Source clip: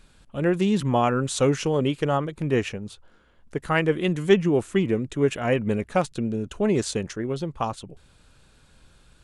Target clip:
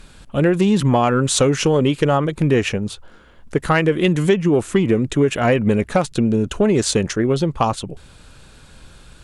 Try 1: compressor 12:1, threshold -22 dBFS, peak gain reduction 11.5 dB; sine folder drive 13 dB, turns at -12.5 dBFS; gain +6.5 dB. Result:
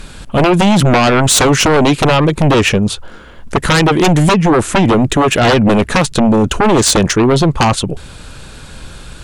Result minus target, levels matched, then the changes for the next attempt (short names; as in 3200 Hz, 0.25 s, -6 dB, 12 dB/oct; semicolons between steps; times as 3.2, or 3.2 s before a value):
sine folder: distortion +25 dB
change: sine folder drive 1 dB, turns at -12.5 dBFS